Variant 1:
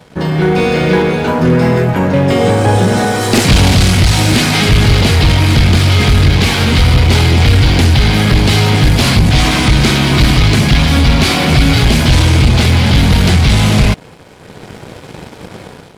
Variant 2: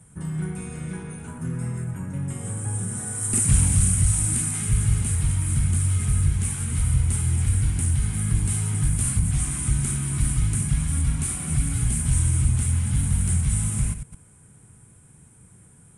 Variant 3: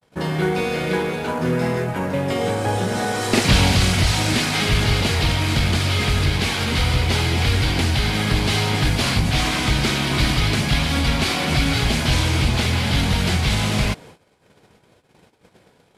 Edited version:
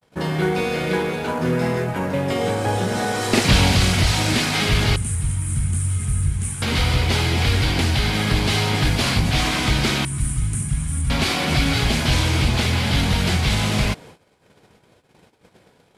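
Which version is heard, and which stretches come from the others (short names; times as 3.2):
3
4.96–6.62 from 2
10.05–11.1 from 2
not used: 1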